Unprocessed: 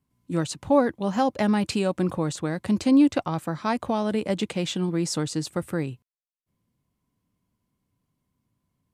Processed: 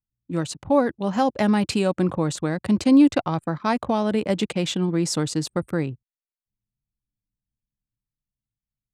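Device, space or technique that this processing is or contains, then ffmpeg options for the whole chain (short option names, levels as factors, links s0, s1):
voice memo with heavy noise removal: -af "anlmdn=0.398,dynaudnorm=f=130:g=17:m=1.41"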